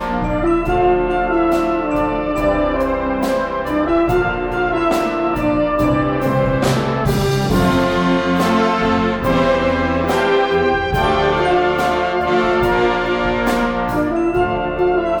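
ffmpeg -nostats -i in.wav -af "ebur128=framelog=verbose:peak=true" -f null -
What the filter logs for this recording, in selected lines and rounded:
Integrated loudness:
  I:         -16.6 LUFS
  Threshold: -26.6 LUFS
Loudness range:
  LRA:         1.8 LU
  Threshold: -36.5 LUFS
  LRA low:   -17.5 LUFS
  LRA high:  -15.7 LUFS
True peak:
  Peak:       -4.7 dBFS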